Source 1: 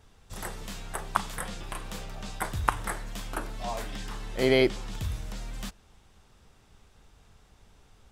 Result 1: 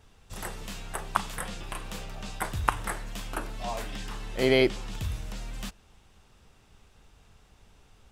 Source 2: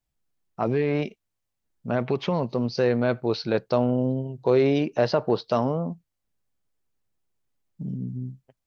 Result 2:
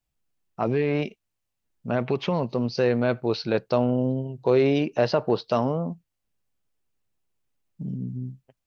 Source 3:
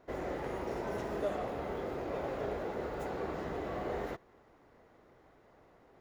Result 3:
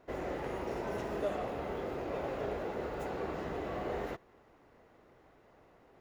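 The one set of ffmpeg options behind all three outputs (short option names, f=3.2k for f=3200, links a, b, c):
-af "equalizer=f=2.7k:w=4.7:g=3.5"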